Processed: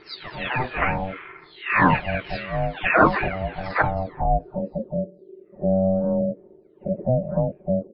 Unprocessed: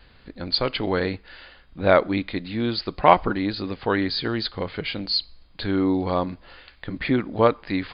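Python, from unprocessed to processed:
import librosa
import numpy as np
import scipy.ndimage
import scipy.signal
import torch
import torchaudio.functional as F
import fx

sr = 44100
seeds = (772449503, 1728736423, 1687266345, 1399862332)

y = fx.spec_delay(x, sr, highs='early', ms=775)
y = fx.filter_sweep_lowpass(y, sr, from_hz=2000.0, to_hz=200.0, start_s=3.59, end_s=4.62, q=3.4)
y = y * np.sin(2.0 * np.pi * 380.0 * np.arange(len(y)) / sr)
y = y * 10.0 ** (4.0 / 20.0)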